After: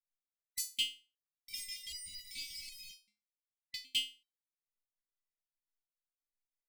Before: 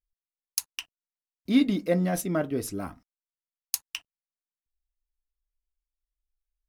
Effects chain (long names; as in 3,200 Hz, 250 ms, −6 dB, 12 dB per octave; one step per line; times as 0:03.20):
frequency inversion band by band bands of 2,000 Hz
0:01.80–0:03.81: low-pass filter 3,400 Hz 24 dB per octave
leveller curve on the samples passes 5
brickwall limiter −16 dBFS, peak gain reduction 7.5 dB
downward compressor, threshold −22 dBFS, peak gain reduction 4.5 dB
linear-phase brick-wall band-stop 280–2,000 Hz
step-sequenced resonator 2.6 Hz 210–970 Hz
level +8 dB